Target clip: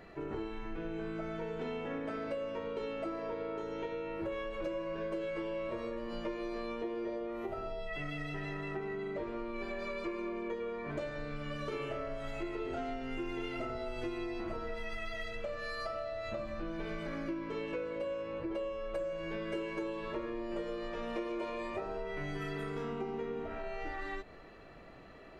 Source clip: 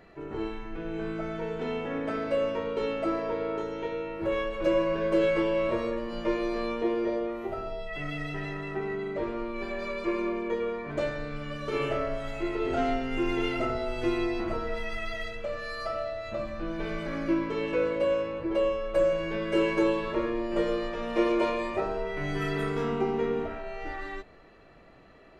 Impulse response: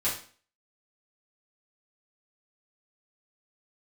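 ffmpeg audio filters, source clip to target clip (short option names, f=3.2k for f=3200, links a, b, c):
-af "acompressor=threshold=-37dB:ratio=6,volume=1dB"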